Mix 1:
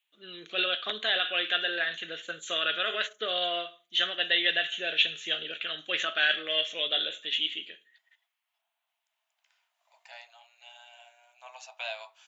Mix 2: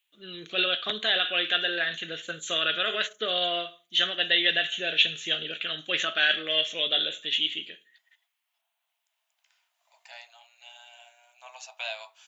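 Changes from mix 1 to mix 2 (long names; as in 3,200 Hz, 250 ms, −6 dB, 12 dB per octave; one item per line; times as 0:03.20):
first voice: remove high-pass filter 440 Hz 6 dB per octave
master: add high-shelf EQ 3,700 Hz +6.5 dB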